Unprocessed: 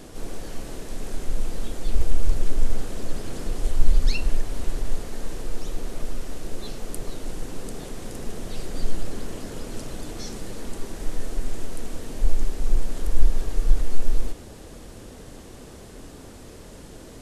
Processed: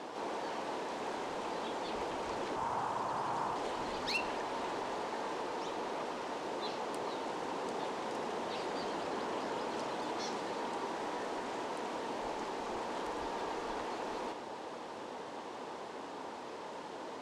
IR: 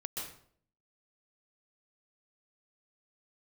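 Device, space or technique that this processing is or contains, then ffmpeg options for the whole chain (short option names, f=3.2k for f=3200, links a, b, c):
intercom: -filter_complex "[0:a]highpass=350,lowpass=4k,equalizer=f=920:t=o:w=0.59:g=12,asoftclip=type=tanh:threshold=-28dB,asettb=1/sr,asplit=3[a][b][c];[a]atrim=end=2.564[d];[b]atrim=start=2.56:end=3.56,asetpts=PTS-STARTPTS,afade=t=in:d=0.004:c=qsin,afade=t=out:st=0.996:d=0.004:c=qsin,equalizer=f=125:t=o:w=1:g=8,equalizer=f=250:t=o:w=1:g=-5,equalizer=f=500:t=o:w=1:g=-5,equalizer=f=1k:t=o:w=1:g=8,equalizer=f=2k:t=o:w=1:g=-4,equalizer=f=4k:t=o:w=1:g=-4[e];[c]atrim=start=3.556[f];[d][e]acrossfade=d=0.004:c1=hsin:c2=qsin[g];[g][f]acrossfade=d=0.004:c1=qsin:c2=hsin,volume=1dB"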